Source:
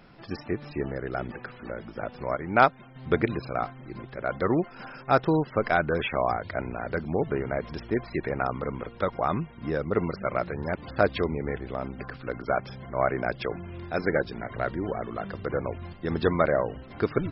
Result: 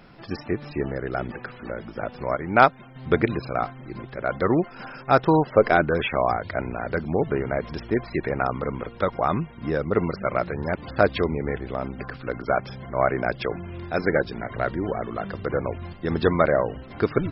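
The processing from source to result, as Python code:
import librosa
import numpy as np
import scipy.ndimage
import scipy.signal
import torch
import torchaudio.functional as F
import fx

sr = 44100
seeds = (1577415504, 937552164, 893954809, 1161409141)

y = fx.peak_eq(x, sr, hz=fx.line((5.27, 1100.0), (5.84, 280.0)), db=7.5, octaves=0.92, at=(5.27, 5.84), fade=0.02)
y = F.gain(torch.from_numpy(y), 3.5).numpy()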